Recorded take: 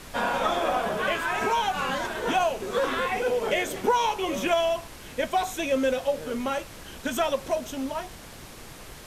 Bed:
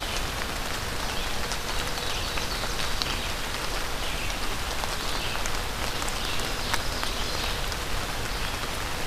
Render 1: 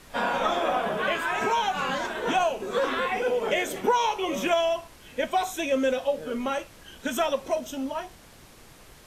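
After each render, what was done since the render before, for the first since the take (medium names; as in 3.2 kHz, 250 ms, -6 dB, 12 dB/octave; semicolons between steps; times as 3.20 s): noise print and reduce 7 dB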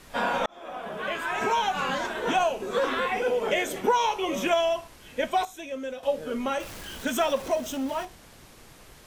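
0.46–1.52 s: fade in; 5.45–6.03 s: gain -10 dB; 6.60–8.05 s: jump at every zero crossing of -37.5 dBFS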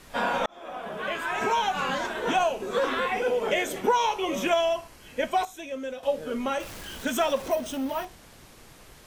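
4.73–5.47 s: band-stop 3.6 kHz; 7.50–8.05 s: careless resampling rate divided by 3×, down filtered, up hold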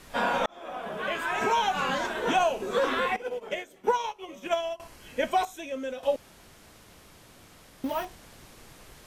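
3.16–4.80 s: upward expansion 2.5:1, over -33 dBFS; 6.16–7.84 s: room tone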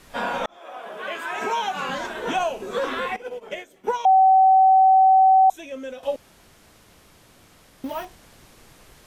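0.56–1.88 s: high-pass 480 Hz -> 130 Hz; 4.05–5.50 s: bleep 762 Hz -11 dBFS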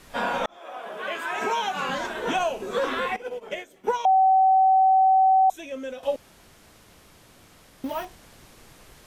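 dynamic bell 840 Hz, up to -5 dB, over -27 dBFS, Q 3.5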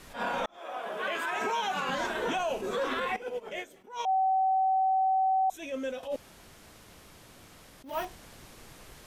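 peak limiter -22.5 dBFS, peak gain reduction 10 dB; attacks held to a fixed rise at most 160 dB/s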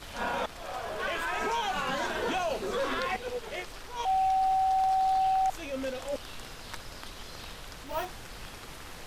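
add bed -15 dB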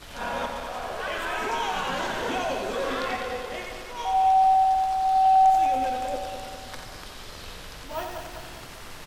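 backward echo that repeats 101 ms, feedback 75%, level -6.5 dB; delay 88 ms -6.5 dB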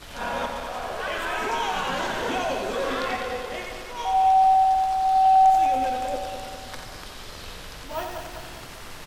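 trim +1.5 dB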